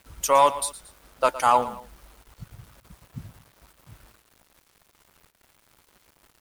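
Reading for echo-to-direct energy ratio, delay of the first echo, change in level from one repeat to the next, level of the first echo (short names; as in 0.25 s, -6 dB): -14.5 dB, 0.114 s, -7.0 dB, -15.5 dB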